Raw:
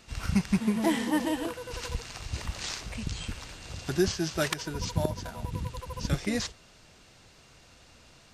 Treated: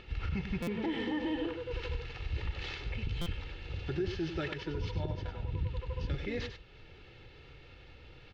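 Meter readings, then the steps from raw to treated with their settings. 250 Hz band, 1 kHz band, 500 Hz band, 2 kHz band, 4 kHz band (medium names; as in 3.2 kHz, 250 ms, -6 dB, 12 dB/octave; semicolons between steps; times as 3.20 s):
-7.5 dB, -8.5 dB, -5.0 dB, -5.5 dB, -7.5 dB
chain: low-pass 3.2 kHz 24 dB/octave; peaking EQ 1 kHz -9 dB 1.5 oct; comb 2.3 ms, depth 60%; peak limiter -26.5 dBFS, peak gain reduction 11 dB; upward compressor, threshold -47 dBFS; delay 98 ms -9 dB; buffer glitch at 0.62/3.21 s, samples 256, times 8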